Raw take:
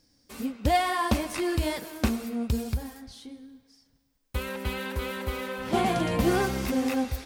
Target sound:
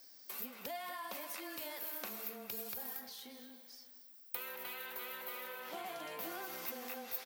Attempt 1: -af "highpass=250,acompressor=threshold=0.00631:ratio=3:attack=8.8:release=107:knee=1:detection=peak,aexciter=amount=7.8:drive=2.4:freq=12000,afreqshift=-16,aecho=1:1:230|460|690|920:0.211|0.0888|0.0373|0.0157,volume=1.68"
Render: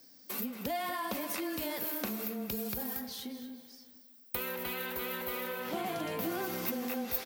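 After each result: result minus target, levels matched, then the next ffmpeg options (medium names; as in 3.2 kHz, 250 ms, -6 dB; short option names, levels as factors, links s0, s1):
250 Hz band +8.0 dB; compression: peak gain reduction -7 dB
-af "highpass=610,acompressor=threshold=0.00631:ratio=3:attack=8.8:release=107:knee=1:detection=peak,aexciter=amount=7.8:drive=2.4:freq=12000,afreqshift=-16,aecho=1:1:230|460|690|920:0.211|0.0888|0.0373|0.0157,volume=1.68"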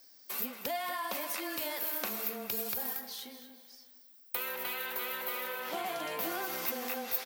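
compression: peak gain reduction -8 dB
-af "highpass=610,acompressor=threshold=0.00158:ratio=3:attack=8.8:release=107:knee=1:detection=peak,aexciter=amount=7.8:drive=2.4:freq=12000,afreqshift=-16,aecho=1:1:230|460|690|920:0.211|0.0888|0.0373|0.0157,volume=1.68"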